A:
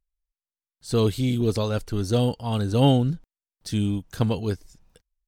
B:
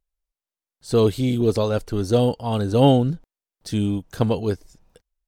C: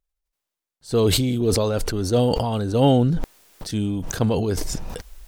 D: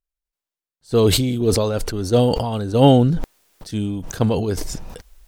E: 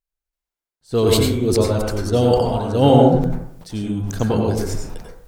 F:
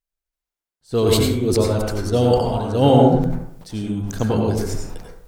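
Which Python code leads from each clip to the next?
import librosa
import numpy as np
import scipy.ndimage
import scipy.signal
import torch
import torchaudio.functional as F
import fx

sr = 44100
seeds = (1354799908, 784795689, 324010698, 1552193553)

y1 = fx.peak_eq(x, sr, hz=540.0, db=6.0, octaves=2.1)
y2 = fx.sustainer(y1, sr, db_per_s=23.0)
y2 = y2 * librosa.db_to_amplitude(-2.0)
y3 = fx.upward_expand(y2, sr, threshold_db=-36.0, expansion=1.5)
y3 = y3 * librosa.db_to_amplitude(5.0)
y4 = fx.rev_plate(y3, sr, seeds[0], rt60_s=0.69, hf_ratio=0.3, predelay_ms=80, drr_db=-1.5)
y4 = y4 * librosa.db_to_amplitude(-2.5)
y5 = y4 + 10.0 ** (-14.5 / 20.0) * np.pad(y4, (int(74 * sr / 1000.0), 0))[:len(y4)]
y5 = y5 * librosa.db_to_amplitude(-1.0)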